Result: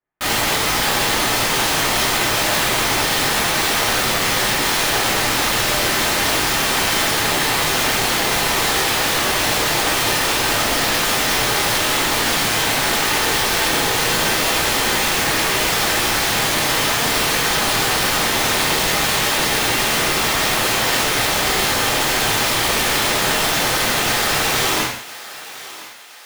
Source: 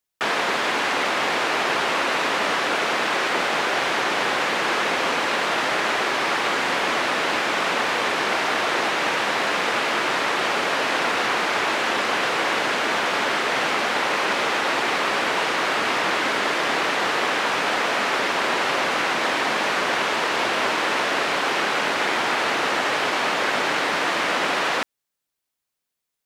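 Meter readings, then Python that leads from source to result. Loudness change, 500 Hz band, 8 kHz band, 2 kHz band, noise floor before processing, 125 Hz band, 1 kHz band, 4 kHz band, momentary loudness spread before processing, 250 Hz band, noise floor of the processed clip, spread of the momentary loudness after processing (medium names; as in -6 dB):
+5.0 dB, +2.0 dB, +14.5 dB, +2.5 dB, -82 dBFS, +14.5 dB, +1.5 dB, +7.5 dB, 0 LU, +5.0 dB, -34 dBFS, 0 LU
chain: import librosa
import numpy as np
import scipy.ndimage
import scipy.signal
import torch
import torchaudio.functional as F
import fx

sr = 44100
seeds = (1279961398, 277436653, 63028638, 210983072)

y = scipy.signal.sosfilt(scipy.signal.butter(4, 1900.0, 'lowpass', fs=sr, output='sos'), x)
y = (np.mod(10.0 ** (20.5 / 20.0) * y + 1.0, 2.0) - 1.0) / 10.0 ** (20.5 / 20.0)
y = fx.echo_thinned(y, sr, ms=1016, feedback_pct=46, hz=500.0, wet_db=-16)
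y = fx.rev_gated(y, sr, seeds[0], gate_ms=220, shape='falling', drr_db=-6.5)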